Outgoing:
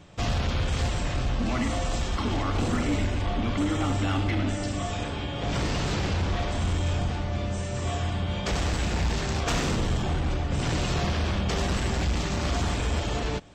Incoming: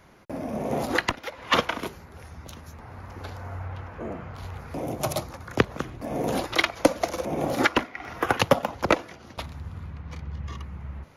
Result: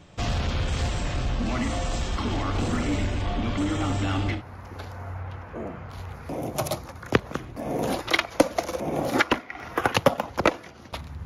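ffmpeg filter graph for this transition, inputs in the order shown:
ffmpeg -i cue0.wav -i cue1.wav -filter_complex "[0:a]apad=whole_dur=11.25,atrim=end=11.25,atrim=end=4.43,asetpts=PTS-STARTPTS[link_01];[1:a]atrim=start=2.76:end=9.7,asetpts=PTS-STARTPTS[link_02];[link_01][link_02]acrossfade=duration=0.12:curve1=tri:curve2=tri" out.wav

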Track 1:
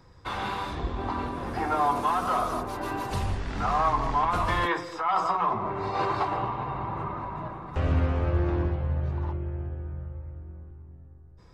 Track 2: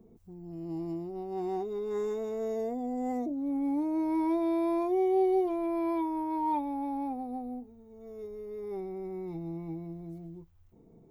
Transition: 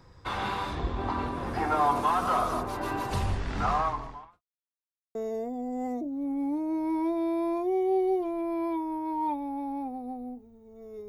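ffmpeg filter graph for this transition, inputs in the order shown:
ffmpeg -i cue0.wav -i cue1.wav -filter_complex "[0:a]apad=whole_dur=11.08,atrim=end=11.08,asplit=2[link_01][link_02];[link_01]atrim=end=4.42,asetpts=PTS-STARTPTS,afade=type=out:start_time=3.69:duration=0.73:curve=qua[link_03];[link_02]atrim=start=4.42:end=5.15,asetpts=PTS-STARTPTS,volume=0[link_04];[1:a]atrim=start=2.4:end=8.33,asetpts=PTS-STARTPTS,afade=type=in:duration=0.004:curve=hsin[link_05];[link_03][link_04][link_05]concat=n=3:v=0:a=1" out.wav

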